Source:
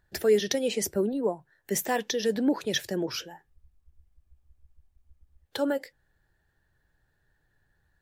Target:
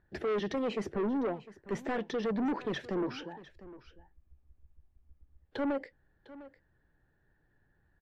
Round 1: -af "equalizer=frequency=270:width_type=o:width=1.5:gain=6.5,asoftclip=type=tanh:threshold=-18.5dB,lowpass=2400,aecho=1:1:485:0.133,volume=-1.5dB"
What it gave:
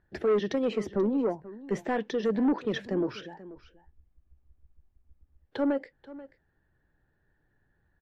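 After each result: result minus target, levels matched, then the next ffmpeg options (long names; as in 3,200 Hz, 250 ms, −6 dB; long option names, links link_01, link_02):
echo 218 ms early; soft clipping: distortion −6 dB
-af "equalizer=frequency=270:width_type=o:width=1.5:gain=6.5,asoftclip=type=tanh:threshold=-18.5dB,lowpass=2400,aecho=1:1:703:0.133,volume=-1.5dB"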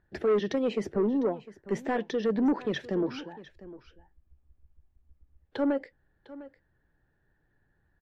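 soft clipping: distortion −6 dB
-af "equalizer=frequency=270:width_type=o:width=1.5:gain=6.5,asoftclip=type=tanh:threshold=-27dB,lowpass=2400,aecho=1:1:703:0.133,volume=-1.5dB"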